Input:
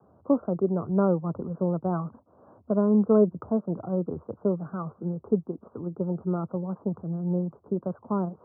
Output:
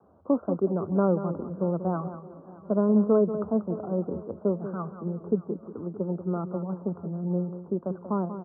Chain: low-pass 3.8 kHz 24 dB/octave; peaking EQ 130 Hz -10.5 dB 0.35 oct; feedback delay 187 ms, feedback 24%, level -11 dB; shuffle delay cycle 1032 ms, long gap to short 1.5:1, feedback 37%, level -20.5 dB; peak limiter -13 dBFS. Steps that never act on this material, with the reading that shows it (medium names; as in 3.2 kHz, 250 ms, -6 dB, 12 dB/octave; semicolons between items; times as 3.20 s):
low-pass 3.8 kHz: input has nothing above 1.2 kHz